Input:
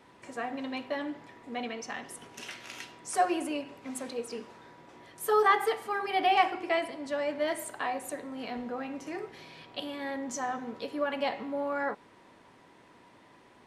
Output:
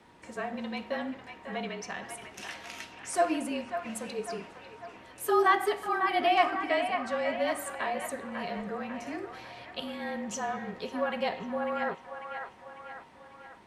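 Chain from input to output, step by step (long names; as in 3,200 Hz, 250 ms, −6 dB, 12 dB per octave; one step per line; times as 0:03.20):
frequency shifter −36 Hz
delay with a band-pass on its return 546 ms, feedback 52%, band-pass 1,400 Hz, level −5.5 dB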